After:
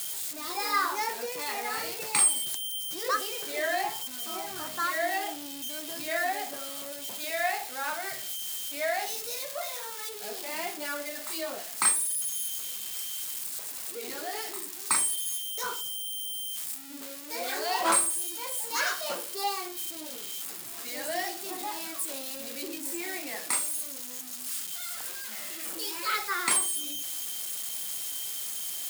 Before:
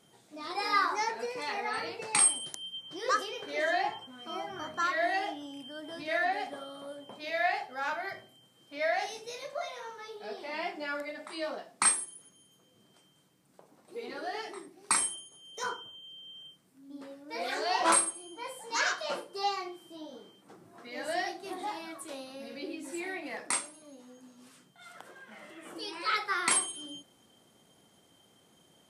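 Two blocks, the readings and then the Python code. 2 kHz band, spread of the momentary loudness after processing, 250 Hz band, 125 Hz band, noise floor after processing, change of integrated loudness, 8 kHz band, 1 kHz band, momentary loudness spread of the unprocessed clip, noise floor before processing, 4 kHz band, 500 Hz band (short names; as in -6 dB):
+0.5 dB, 11 LU, 0.0 dB, n/a, -40 dBFS, +2.0 dB, +4.0 dB, 0.0 dB, 20 LU, -65 dBFS, +4.5 dB, 0.0 dB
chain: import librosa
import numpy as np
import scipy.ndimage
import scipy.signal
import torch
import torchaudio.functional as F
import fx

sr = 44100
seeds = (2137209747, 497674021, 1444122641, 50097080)

y = x + 0.5 * 10.0 ** (-27.0 / 20.0) * np.diff(np.sign(x), prepend=np.sign(x[:1]))
y = fx.notch(y, sr, hz=5900.0, q=24.0)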